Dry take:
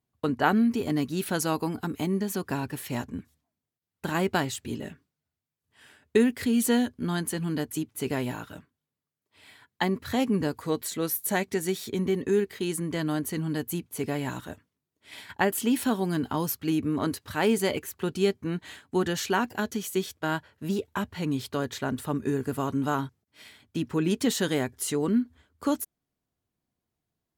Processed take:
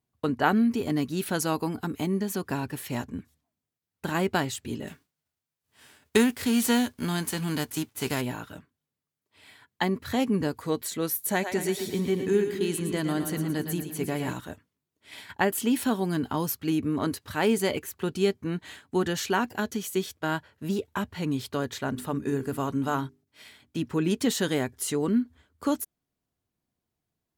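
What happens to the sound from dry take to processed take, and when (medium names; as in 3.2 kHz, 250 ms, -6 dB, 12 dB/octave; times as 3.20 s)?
4.87–8.20 s: formants flattened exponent 0.6
11.31–14.33 s: two-band feedback delay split 380 Hz, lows 267 ms, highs 114 ms, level -7.5 dB
21.81–23.79 s: hum notches 50/100/150/200/250/300/350/400 Hz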